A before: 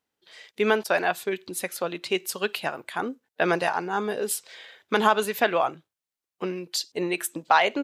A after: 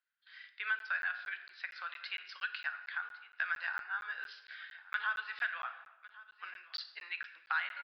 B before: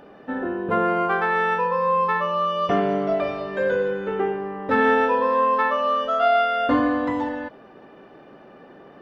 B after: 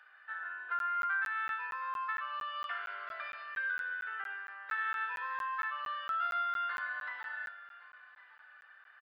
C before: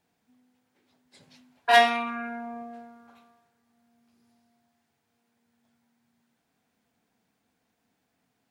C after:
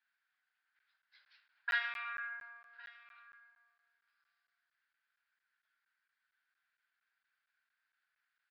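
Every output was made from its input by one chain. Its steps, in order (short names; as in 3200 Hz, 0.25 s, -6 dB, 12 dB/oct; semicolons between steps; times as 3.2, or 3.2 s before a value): ladder high-pass 1400 Hz, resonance 70%; shoebox room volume 430 m³, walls mixed, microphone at 0.49 m; compressor 2:1, threshold -37 dBFS; downsampling 11025 Hz; echo 1.106 s -19.5 dB; crackling interface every 0.23 s, samples 512, zero, from 0.79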